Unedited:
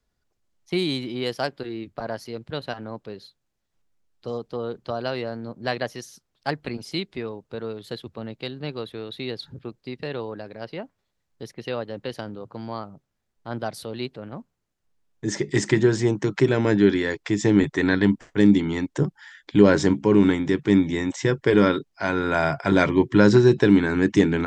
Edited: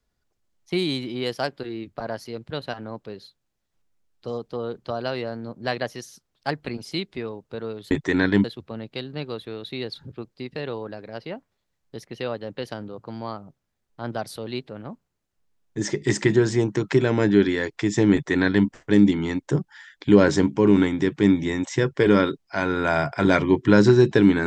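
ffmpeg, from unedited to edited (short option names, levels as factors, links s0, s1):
-filter_complex "[0:a]asplit=3[s0][s1][s2];[s0]atrim=end=7.912[s3];[s1]atrim=start=17.598:end=18.132[s4];[s2]atrim=start=7.908[s5];[s3][s4]acrossfade=d=0.004:c1=hsin:c2=hsin[s6];[s6][s5]acrossfade=d=0.004:c1=hsin:c2=hsin"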